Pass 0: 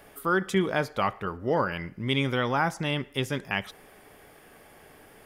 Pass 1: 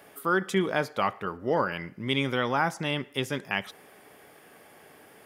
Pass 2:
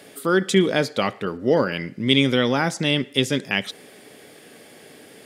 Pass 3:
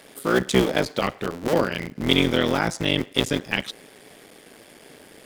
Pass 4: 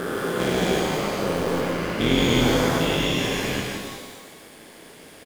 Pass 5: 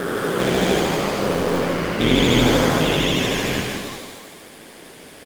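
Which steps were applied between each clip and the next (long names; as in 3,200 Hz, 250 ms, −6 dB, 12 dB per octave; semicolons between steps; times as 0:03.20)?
Bessel high-pass filter 150 Hz, order 2
octave-band graphic EQ 125/250/500/1,000/2,000/4,000/8,000 Hz +6/+9/+7/−4/+4/+11/+10 dB
sub-harmonics by changed cycles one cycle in 3, muted
spectrum averaged block by block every 400 ms; single-tap delay 168 ms −5.5 dB; reverb with rising layers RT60 1.3 s, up +12 semitones, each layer −8 dB, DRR 0.5 dB
pitch vibrato 13 Hz 97 cents; level +3.5 dB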